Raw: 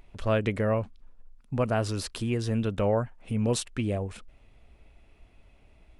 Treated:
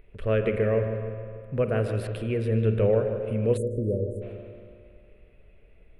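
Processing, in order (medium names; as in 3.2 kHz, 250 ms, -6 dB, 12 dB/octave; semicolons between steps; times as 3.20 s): FFT filter 170 Hz 0 dB, 290 Hz -5 dB, 450 Hz +8 dB, 850 Hz -11 dB, 1.7 kHz 0 dB, 2.6 kHz -1 dB, 6.4 kHz -22 dB, 9.8 kHz -7 dB; on a send: filtered feedback delay 152 ms, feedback 59%, low-pass 2 kHz, level -9 dB; on the sum: spring tank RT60 2.3 s, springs 45 ms, chirp 55 ms, DRR 7.5 dB; spectral selection erased 3.57–4.22 s, 620–6200 Hz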